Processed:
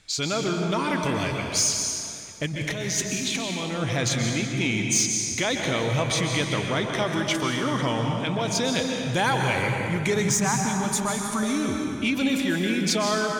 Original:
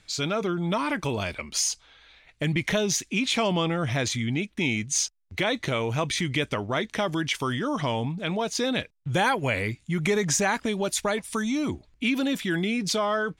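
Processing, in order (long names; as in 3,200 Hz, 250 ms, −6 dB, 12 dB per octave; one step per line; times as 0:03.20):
0:02.46–0:03.82: compressor whose output falls as the input rises −31 dBFS, ratio −1
parametric band 6,800 Hz +4.5 dB 1.5 octaves
dense smooth reverb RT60 2.5 s, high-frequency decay 0.65×, pre-delay 115 ms, DRR 2 dB
soft clipping −12 dBFS, distortion −25 dB
0:10.29–0:11.43: graphic EQ with 10 bands 125 Hz +7 dB, 500 Hz −10 dB, 1,000 Hz +6 dB, 2,000 Hz −5 dB, 4,000 Hz −5 dB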